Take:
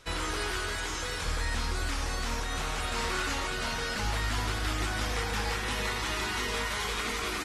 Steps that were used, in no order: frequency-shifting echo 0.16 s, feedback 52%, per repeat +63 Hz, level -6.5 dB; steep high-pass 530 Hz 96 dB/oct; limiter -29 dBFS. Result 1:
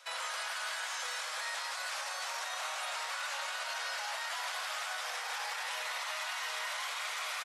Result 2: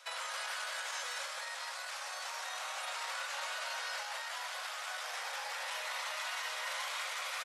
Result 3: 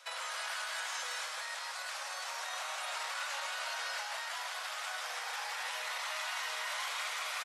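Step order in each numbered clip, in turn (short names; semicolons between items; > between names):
steep high-pass > frequency-shifting echo > limiter; frequency-shifting echo > limiter > steep high-pass; limiter > steep high-pass > frequency-shifting echo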